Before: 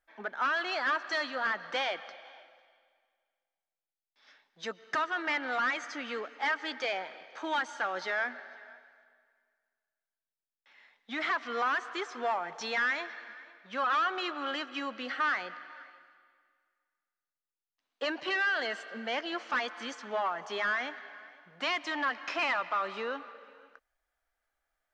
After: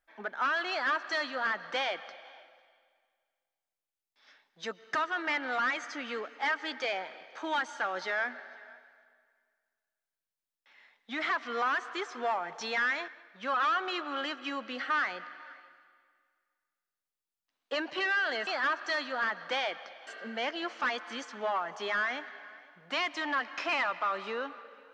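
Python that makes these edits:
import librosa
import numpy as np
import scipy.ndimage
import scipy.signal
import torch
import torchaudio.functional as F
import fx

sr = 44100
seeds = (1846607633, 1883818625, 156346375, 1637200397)

y = fx.edit(x, sr, fx.duplicate(start_s=0.7, length_s=1.6, to_s=18.77),
    fx.cut(start_s=13.08, length_s=0.3), tone=tone)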